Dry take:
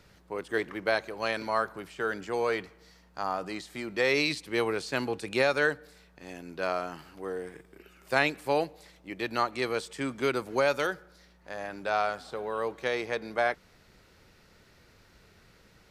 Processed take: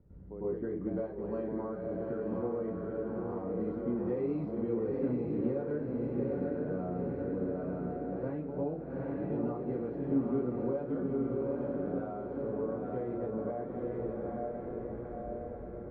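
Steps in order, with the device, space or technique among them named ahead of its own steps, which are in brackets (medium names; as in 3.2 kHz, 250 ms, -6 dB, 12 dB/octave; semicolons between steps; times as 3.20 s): echo that smears into a reverb 860 ms, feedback 54%, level -3.5 dB; television next door (compression 4:1, threshold -32 dBFS, peak gain reduction 12 dB; low-pass 330 Hz 12 dB/octave; reverberation RT60 0.30 s, pre-delay 97 ms, DRR -9 dB); trim -1.5 dB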